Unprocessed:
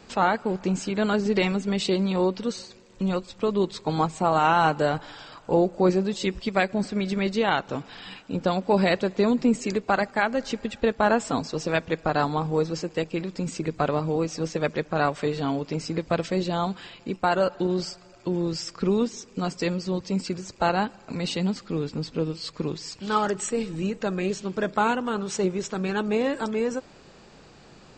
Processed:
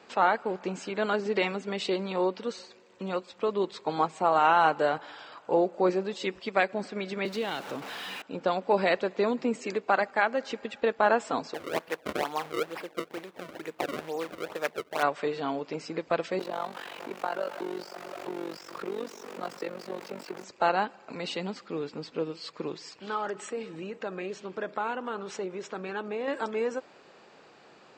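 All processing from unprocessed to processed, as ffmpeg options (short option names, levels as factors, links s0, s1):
-filter_complex "[0:a]asettb=1/sr,asplit=3[s0][s1][s2];[s0]atrim=end=7.254[s3];[s1]atrim=start=7.25:end=8.22,asetpts=PTS-STARTPTS,afade=t=in:d=0.004:c=qsin,afade=t=out:st=0.966:d=0.004:c=qsin,aeval=exprs='val(0)+0.5*0.0251*sgn(val(0))':c=same,acrossover=split=370|3000[s4][s5][s6];[s5]acompressor=threshold=0.0178:ratio=3:attack=3.2:release=140:knee=2.83:detection=peak[s7];[s4][s7][s6]amix=inputs=3:normalize=0[s8];[s2]atrim=start=8.216[s9];[s3][s8]acrossfade=d=0.004:c1=hsin:c2=qsin[s10];[s10][s9]acrossfade=d=0.004:c1=qsin:c2=hsin,asettb=1/sr,asplit=3[s11][s12][s13];[s11]atrim=end=11.544[s14];[s12]atrim=start=11.54:end=15.03,asetpts=PTS-STARTPTS,afade=t=in:d=0.004:c=qsin,afade=t=out:st=3.486:d=0.004:c=qsin,lowshelf=f=380:g=-11,acrusher=samples=30:mix=1:aa=0.000001:lfo=1:lforange=48:lforate=2.2[s15];[s13]atrim=start=15.026[s16];[s14][s15]acrossfade=d=0.004:c1=hsin:c2=qsin[s17];[s17][s16]acrossfade=d=0.004:c1=qsin:c2=hsin,asettb=1/sr,asplit=3[s18][s19][s20];[s18]atrim=end=16.394[s21];[s19]atrim=start=16.39:end=20.44,asetpts=PTS-STARTPTS,afade=t=in:d=0.004:c=qsin,afade=t=out:st=4.046:d=0.004:c=qsin,aeval=exprs='val(0)+0.5*0.0447*sgn(val(0))':c=same,tremolo=f=47:d=0.889,acrossover=split=100|260|1700[s22][s23][s24][s25];[s22]acompressor=threshold=0.00158:ratio=3[s26];[s23]acompressor=threshold=0.00562:ratio=3[s27];[s24]acompressor=threshold=0.0398:ratio=3[s28];[s25]acompressor=threshold=0.00708:ratio=3[s29];[s26][s27][s28][s29]amix=inputs=4:normalize=0[s30];[s20]atrim=start=20.436[s31];[s21][s30]acrossfade=d=0.004:c1=hsin:c2=qsin[s32];[s32][s31]acrossfade=d=0.004:c1=qsin:c2=hsin,asettb=1/sr,asplit=3[s33][s34][s35];[s33]atrim=end=22.894[s36];[s34]atrim=start=22.89:end=26.28,asetpts=PTS-STARTPTS,afade=t=in:d=0.004:c=qsin,afade=t=out:st=3.386:d=0.004:c=qsin,highshelf=f=6000:g=-6.5,acompressor=threshold=0.0447:ratio=2.5:attack=3.2:release=140:knee=1:detection=peak[s37];[s35]atrim=start=26.276[s38];[s36][s37]acrossfade=d=0.004:c1=hsin:c2=qsin[s39];[s39][s38]acrossfade=d=0.004:c1=qsin:c2=hsin,highpass=100,bass=f=250:g=-15,treble=f=4000:g=-9,volume=0.891"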